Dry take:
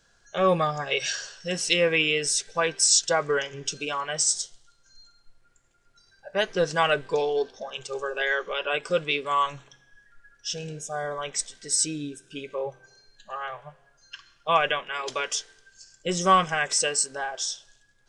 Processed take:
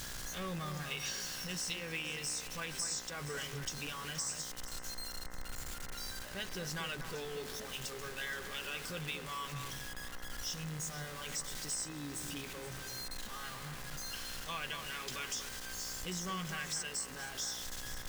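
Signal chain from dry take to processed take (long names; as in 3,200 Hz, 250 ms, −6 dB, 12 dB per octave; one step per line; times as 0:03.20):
converter with a step at zero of −27.5 dBFS
guitar amp tone stack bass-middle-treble 6-0-2
downward compressor, threshold −42 dBFS, peak gain reduction 12 dB
hum with harmonics 60 Hz, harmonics 35, −59 dBFS −1 dB per octave
on a send: delay that swaps between a low-pass and a high-pass 237 ms, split 2,100 Hz, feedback 52%, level −8 dB
on the sum: level +5.5 dB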